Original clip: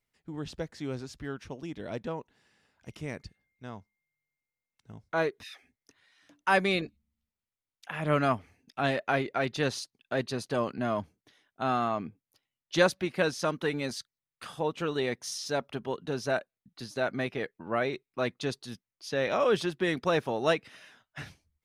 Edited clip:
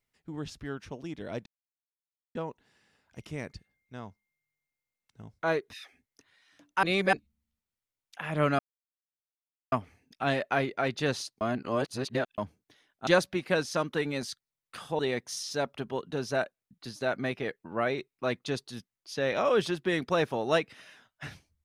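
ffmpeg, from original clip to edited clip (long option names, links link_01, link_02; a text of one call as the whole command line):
ffmpeg -i in.wav -filter_complex "[0:a]asplit=10[link_01][link_02][link_03][link_04][link_05][link_06][link_07][link_08][link_09][link_10];[link_01]atrim=end=0.502[link_11];[link_02]atrim=start=1.088:end=2.05,asetpts=PTS-STARTPTS,afade=type=out:start_time=0.958:duration=0.004:curve=hsin,apad=pad_dur=0.89[link_12];[link_03]atrim=start=2.05:end=6.532,asetpts=PTS-STARTPTS,afade=type=in:duration=0.004:curve=hsin[link_13];[link_04]atrim=start=6.528:end=6.832,asetpts=PTS-STARTPTS,areverse[link_14];[link_05]atrim=start=6.828:end=8.29,asetpts=PTS-STARTPTS,afade=type=out:start_time=1.458:duration=0.004:curve=hsin,apad=pad_dur=1.13[link_15];[link_06]atrim=start=8.29:end=9.982,asetpts=PTS-STARTPTS,afade=type=in:duration=0.004:curve=hsin[link_16];[link_07]atrim=start=9.978:end=10.952,asetpts=PTS-STARTPTS,areverse[link_17];[link_08]atrim=start=10.948:end=11.642[link_18];[link_09]atrim=start=12.748:end=14.672[link_19];[link_10]atrim=start=14.938[link_20];[link_12][link_13]concat=n=2:v=0:a=1[link_21];[link_11][link_21]acrossfade=duration=0.004:curve1=hsin:curve2=hsin[link_22];[link_22][link_14]acrossfade=duration=0.004:curve1=hsin:curve2=hsin[link_23];[link_15][link_16]concat=n=2:v=0:a=1[link_24];[link_23][link_24]acrossfade=duration=0.004:curve1=hsin:curve2=hsin[link_25];[link_25][link_17]acrossfade=duration=0.004:curve1=hsin:curve2=hsin[link_26];[link_26][link_18]acrossfade=duration=0.004:curve1=hsin:curve2=hsin[link_27];[link_27][link_19]acrossfade=duration=0.004:curve1=hsin:curve2=hsin[link_28];[link_28][link_20]acrossfade=duration=0.004:curve1=hsin:curve2=hsin" out.wav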